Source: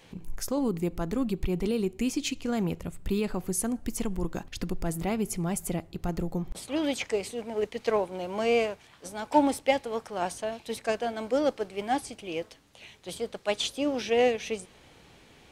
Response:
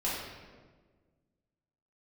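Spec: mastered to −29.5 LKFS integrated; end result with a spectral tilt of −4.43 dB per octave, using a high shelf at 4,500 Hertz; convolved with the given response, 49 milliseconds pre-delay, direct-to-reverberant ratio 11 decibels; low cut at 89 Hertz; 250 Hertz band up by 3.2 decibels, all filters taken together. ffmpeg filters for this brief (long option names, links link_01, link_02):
-filter_complex "[0:a]highpass=89,equalizer=frequency=250:width_type=o:gain=4,highshelf=frequency=4500:gain=6.5,asplit=2[link_01][link_02];[1:a]atrim=start_sample=2205,adelay=49[link_03];[link_02][link_03]afir=irnorm=-1:irlink=0,volume=-18dB[link_04];[link_01][link_04]amix=inputs=2:normalize=0,volume=-1.5dB"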